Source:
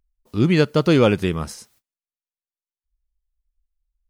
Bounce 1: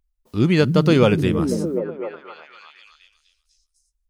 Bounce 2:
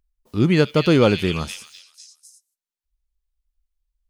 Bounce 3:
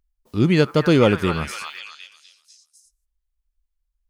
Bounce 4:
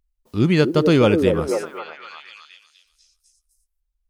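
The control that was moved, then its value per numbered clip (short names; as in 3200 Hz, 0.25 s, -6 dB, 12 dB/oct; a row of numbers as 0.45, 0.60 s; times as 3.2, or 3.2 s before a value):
delay with a stepping band-pass, band-pass from: 160, 3300, 1200, 400 Hz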